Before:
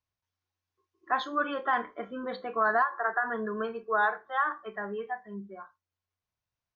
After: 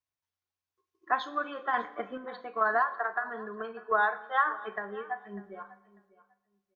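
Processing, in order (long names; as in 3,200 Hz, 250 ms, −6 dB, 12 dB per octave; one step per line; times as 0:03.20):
low-shelf EQ 160 Hz −8.5 dB
transient designer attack +5 dB, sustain +1 dB
sample-and-hold tremolo 2.3 Hz
on a send: repeating echo 596 ms, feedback 18%, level −19.5 dB
on the sum: four-comb reverb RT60 1.2 s, combs from 31 ms, DRR 16 dB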